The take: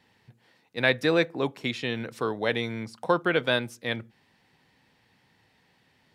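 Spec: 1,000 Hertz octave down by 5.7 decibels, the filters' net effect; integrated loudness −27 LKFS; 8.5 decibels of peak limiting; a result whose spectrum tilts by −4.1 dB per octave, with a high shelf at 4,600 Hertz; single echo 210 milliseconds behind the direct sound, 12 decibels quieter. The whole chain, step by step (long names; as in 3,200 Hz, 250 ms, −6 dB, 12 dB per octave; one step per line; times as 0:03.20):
parametric band 1,000 Hz −7 dB
high-shelf EQ 4,600 Hz −6 dB
brickwall limiter −18 dBFS
single-tap delay 210 ms −12 dB
level +4.5 dB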